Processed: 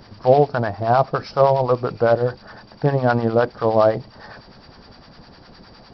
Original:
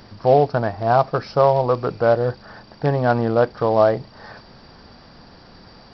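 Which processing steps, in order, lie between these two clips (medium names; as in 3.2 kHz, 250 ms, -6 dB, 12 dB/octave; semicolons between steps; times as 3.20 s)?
harmonic tremolo 9.8 Hz, depth 70%, crossover 800 Hz; trim +3.5 dB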